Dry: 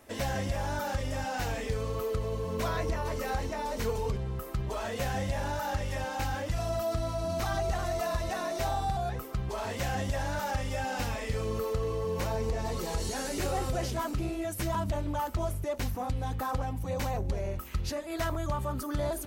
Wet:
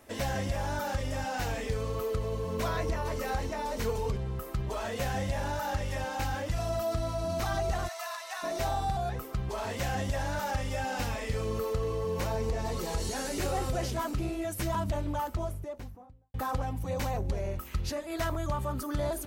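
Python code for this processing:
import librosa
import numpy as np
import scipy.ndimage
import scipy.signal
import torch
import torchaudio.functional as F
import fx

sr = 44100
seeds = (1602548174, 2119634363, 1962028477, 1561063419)

y = fx.highpass(x, sr, hz=880.0, slope=24, at=(7.87, 8.42), fade=0.02)
y = fx.studio_fade_out(y, sr, start_s=15.04, length_s=1.3)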